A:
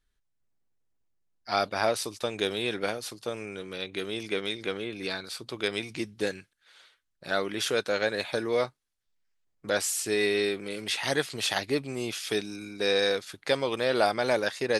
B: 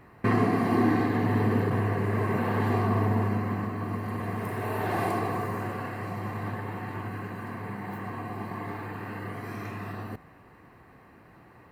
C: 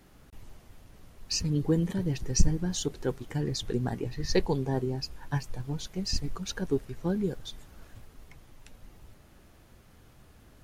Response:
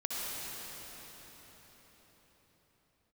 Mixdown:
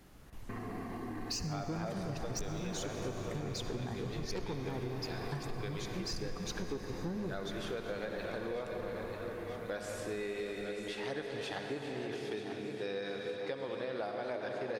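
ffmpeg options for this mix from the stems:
-filter_complex "[0:a]lowpass=frequency=1600:poles=1,volume=-10.5dB,asplit=3[link_01][link_02][link_03];[link_02]volume=-3.5dB[link_04];[link_03]volume=-6.5dB[link_05];[1:a]alimiter=limit=-22dB:level=0:latency=1,adelay=250,volume=-12dB[link_06];[2:a]asoftclip=type=tanh:threshold=-24.5dB,volume=-3dB,asplit=2[link_07][link_08];[link_08]volume=-10.5dB[link_09];[3:a]atrim=start_sample=2205[link_10];[link_04][link_09]amix=inputs=2:normalize=0[link_11];[link_11][link_10]afir=irnorm=-1:irlink=0[link_12];[link_05]aecho=0:1:939|1878|2817|3756|4695|5634|6573|7512:1|0.55|0.303|0.166|0.0915|0.0503|0.0277|0.0152[link_13];[link_01][link_06][link_07][link_12][link_13]amix=inputs=5:normalize=0,acompressor=threshold=-35dB:ratio=6"

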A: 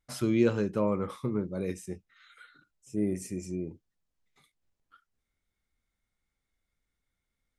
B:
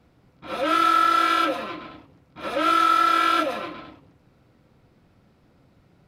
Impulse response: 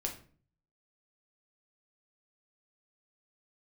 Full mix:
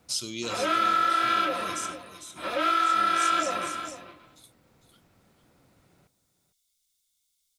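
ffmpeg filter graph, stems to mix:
-filter_complex "[0:a]aexciter=amount=13.1:drive=5.6:freq=2900,volume=-8.5dB,asplit=2[link_01][link_02];[link_02]volume=-10.5dB[link_03];[1:a]volume=-0.5dB,asplit=2[link_04][link_05];[link_05]volume=-14dB[link_06];[link_03][link_06]amix=inputs=2:normalize=0,aecho=0:1:453:1[link_07];[link_01][link_04][link_07]amix=inputs=3:normalize=0,acrossover=split=7700[link_08][link_09];[link_09]acompressor=threshold=-49dB:ratio=4:attack=1:release=60[link_10];[link_08][link_10]amix=inputs=2:normalize=0,lowshelf=frequency=440:gain=-6,acompressor=threshold=-23dB:ratio=2"

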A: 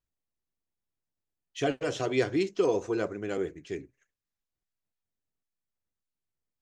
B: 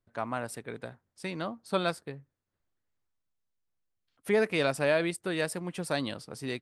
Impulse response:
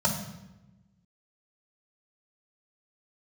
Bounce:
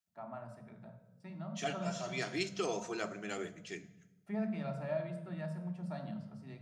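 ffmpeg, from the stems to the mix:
-filter_complex "[0:a]highpass=120,tiltshelf=frequency=970:gain=-7.5,volume=-5dB,asplit=2[link_01][link_02];[link_02]volume=-18dB[link_03];[1:a]agate=range=-12dB:threshold=-53dB:ratio=16:detection=peak,lowpass=frequency=1800:poles=1,bandreject=frequency=56.29:width_type=h:width=4,bandreject=frequency=112.58:width_type=h:width=4,bandreject=frequency=168.87:width_type=h:width=4,bandreject=frequency=225.16:width_type=h:width=4,bandreject=frequency=281.45:width_type=h:width=4,bandreject=frequency=337.74:width_type=h:width=4,bandreject=frequency=394.03:width_type=h:width=4,bandreject=frequency=450.32:width_type=h:width=4,bandreject=frequency=506.61:width_type=h:width=4,bandreject=frequency=562.9:width_type=h:width=4,bandreject=frequency=619.19:width_type=h:width=4,bandreject=frequency=675.48:width_type=h:width=4,bandreject=frequency=731.77:width_type=h:width=4,bandreject=frequency=788.06:width_type=h:width=4,bandreject=frequency=844.35:width_type=h:width=4,bandreject=frequency=900.64:width_type=h:width=4,bandreject=frequency=956.93:width_type=h:width=4,bandreject=frequency=1013.22:width_type=h:width=4,bandreject=frequency=1069.51:width_type=h:width=4,bandreject=frequency=1125.8:width_type=h:width=4,bandreject=frequency=1182.09:width_type=h:width=4,bandreject=frequency=1238.38:width_type=h:width=4,bandreject=frequency=1294.67:width_type=h:width=4,bandreject=frequency=1350.96:width_type=h:width=4,bandreject=frequency=1407.25:width_type=h:width=4,bandreject=frequency=1463.54:width_type=h:width=4,bandreject=frequency=1519.83:width_type=h:width=4,bandreject=frequency=1576.12:width_type=h:width=4,volume=-17.5dB,asplit=3[link_04][link_05][link_06];[link_05]volume=-9.5dB[link_07];[link_06]apad=whole_len=291817[link_08];[link_01][link_08]sidechaincompress=threshold=-59dB:ratio=8:attack=22:release=369[link_09];[2:a]atrim=start_sample=2205[link_10];[link_03][link_07]amix=inputs=2:normalize=0[link_11];[link_11][link_10]afir=irnorm=-1:irlink=0[link_12];[link_09][link_04][link_12]amix=inputs=3:normalize=0"

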